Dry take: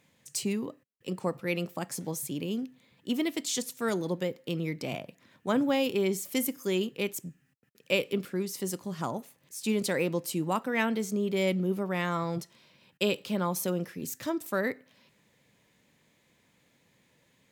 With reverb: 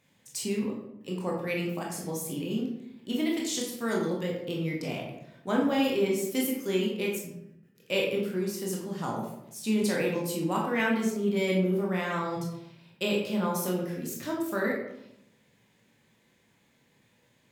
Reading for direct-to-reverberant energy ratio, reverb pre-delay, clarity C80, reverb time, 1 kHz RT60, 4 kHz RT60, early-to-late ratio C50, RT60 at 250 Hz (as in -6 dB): -3.0 dB, 17 ms, 6.5 dB, 0.80 s, 0.75 s, 0.50 s, 3.0 dB, 1.1 s